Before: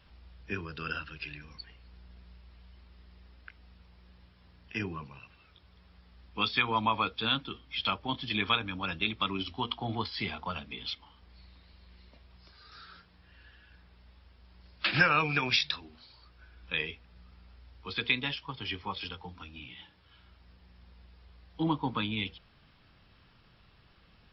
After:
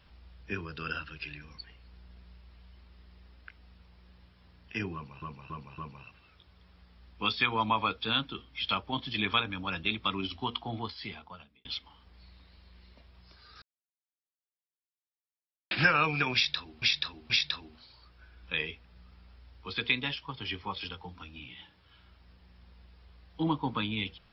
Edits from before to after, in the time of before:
4.94–5.22 loop, 4 plays
9.6–10.81 fade out
12.78–14.87 mute
15.5–15.98 loop, 3 plays

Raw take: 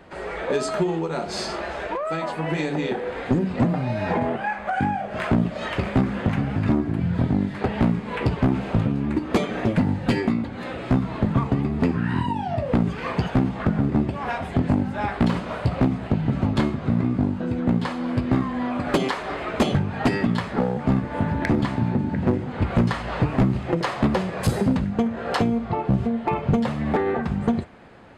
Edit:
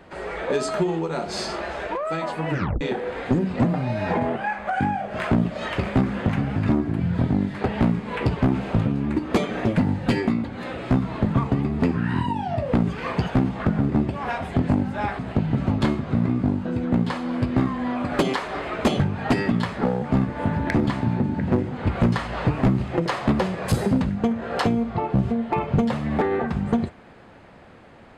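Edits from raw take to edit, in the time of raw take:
2.5 tape stop 0.31 s
15.19–15.94 cut

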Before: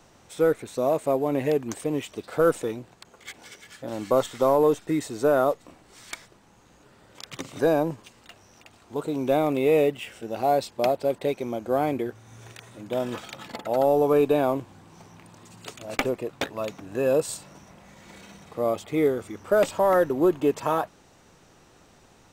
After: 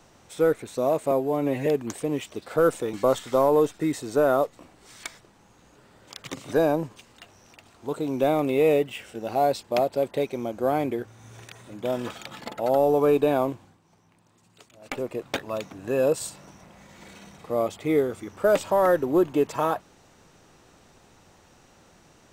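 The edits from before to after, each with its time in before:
1.11–1.48 stretch 1.5×
2.75–4.01 cut
14.57–16.23 dip -13 dB, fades 0.30 s linear

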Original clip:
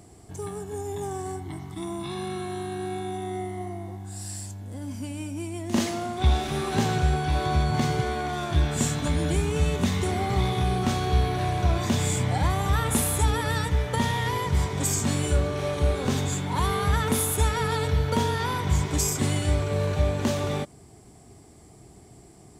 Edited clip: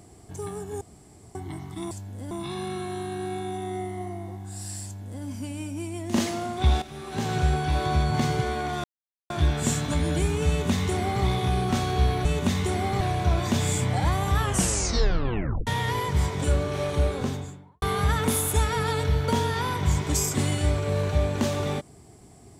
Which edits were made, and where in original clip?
0.81–1.35 room tone
4.44–4.84 copy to 1.91
6.42–7.01 fade in quadratic, from -12.5 dB
8.44 insert silence 0.46 s
9.62–10.38 copy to 11.39
12.75 tape stop 1.30 s
14.82–15.28 cut
15.8–16.66 studio fade out

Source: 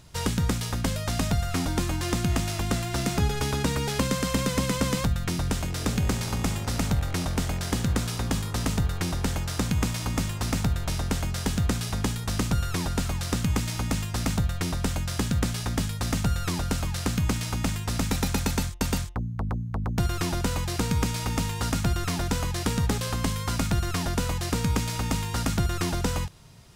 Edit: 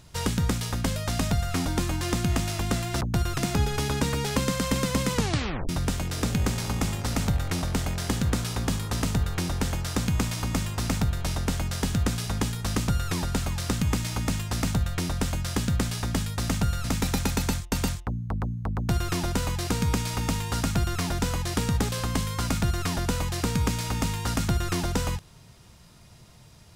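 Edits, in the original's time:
4.76 tape stop 0.56 s
16.47–17.93 cut
19.85–20.22 copy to 3.01

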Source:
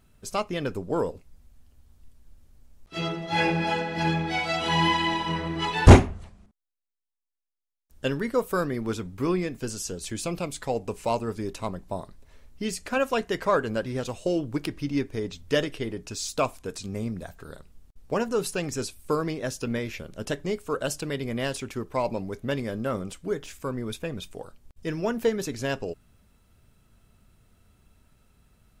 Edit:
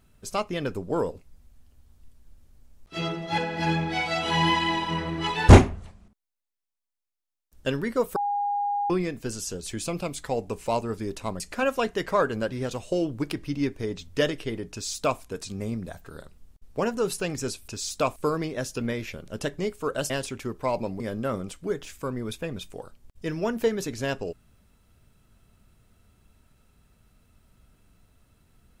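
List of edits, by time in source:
3.38–3.76 cut
8.54–9.28 bleep 815 Hz -23.5 dBFS
11.78–12.74 cut
16.06–16.54 copy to 19.02
20.96–21.41 cut
22.31–22.61 cut

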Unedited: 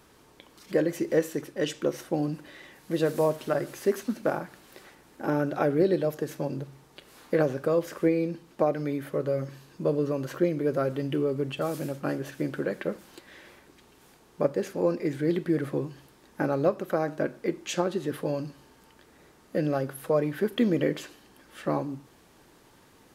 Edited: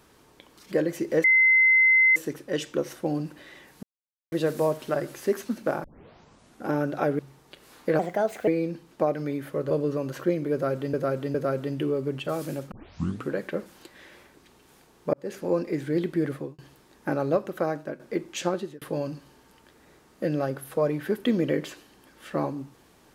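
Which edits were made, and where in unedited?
1.24 add tone 2060 Hz -15 dBFS 0.92 s
2.91 insert silence 0.49 s
4.43 tape start 0.85 s
5.78–6.64 cut
7.44–8.07 speed 130%
9.3–9.85 cut
10.67–11.08 loop, 3 plays
12.04 tape start 0.58 s
14.46–14.72 fade in
15.63–15.91 fade out
17.01–17.32 fade out, to -12 dB
17.87–18.14 fade out

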